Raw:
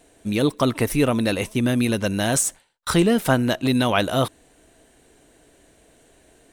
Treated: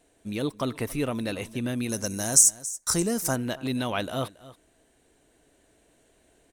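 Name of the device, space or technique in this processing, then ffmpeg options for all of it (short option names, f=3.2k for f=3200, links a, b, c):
ducked delay: -filter_complex "[0:a]asplit=3[a][b][c];[b]adelay=277,volume=-4.5dB[d];[c]apad=whole_len=299992[e];[d][e]sidechaincompress=threshold=-30dB:ratio=10:attack=16:release=1380[f];[a][f]amix=inputs=2:normalize=0,asettb=1/sr,asplit=3[g][h][i];[g]atrim=end=1.894[j];[h]atrim=start=1.89:end=3.36,asetpts=PTS-STARTPTS,afade=t=in:d=0.004:c=qsin,afade=t=out:st=1.466:d=0.004:c=qsin,highshelf=f=4.5k:t=q:w=3:g=10.5[k];[i]atrim=start=3.356[l];[j][k]acrossfade=d=0.004:c1=hsin:c2=qsin[m];[m][l]acrossfade=d=0.004:c1=qsin:c2=hsin,volume=-9dB"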